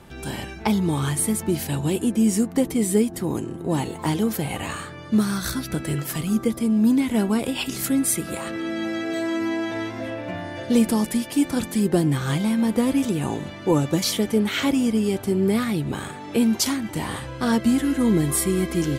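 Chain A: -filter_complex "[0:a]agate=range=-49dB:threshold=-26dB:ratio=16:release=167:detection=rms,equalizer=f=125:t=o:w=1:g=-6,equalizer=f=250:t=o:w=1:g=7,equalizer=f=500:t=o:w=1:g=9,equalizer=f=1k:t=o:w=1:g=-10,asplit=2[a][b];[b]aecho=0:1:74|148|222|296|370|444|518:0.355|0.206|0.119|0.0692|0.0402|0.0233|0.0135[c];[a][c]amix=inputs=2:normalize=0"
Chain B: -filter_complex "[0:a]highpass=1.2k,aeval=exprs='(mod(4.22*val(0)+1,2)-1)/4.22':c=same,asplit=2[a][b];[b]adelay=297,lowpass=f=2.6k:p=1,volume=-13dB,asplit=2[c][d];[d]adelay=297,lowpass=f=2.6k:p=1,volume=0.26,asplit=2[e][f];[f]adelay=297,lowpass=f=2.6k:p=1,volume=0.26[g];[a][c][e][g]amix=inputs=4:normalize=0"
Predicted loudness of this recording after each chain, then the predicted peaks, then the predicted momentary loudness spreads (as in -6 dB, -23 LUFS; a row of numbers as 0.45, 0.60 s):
-17.0, -31.0 LUFS; -1.5, -12.5 dBFS; 11, 12 LU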